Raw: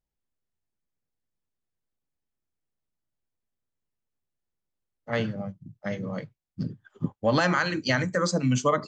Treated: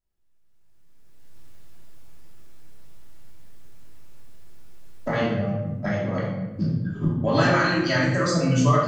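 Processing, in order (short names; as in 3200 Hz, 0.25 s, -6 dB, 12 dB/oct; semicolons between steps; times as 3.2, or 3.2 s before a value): recorder AGC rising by 22 dB/s; vibrato 0.89 Hz 9.5 cents; shoebox room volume 510 m³, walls mixed, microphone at 2.9 m; gain -4.5 dB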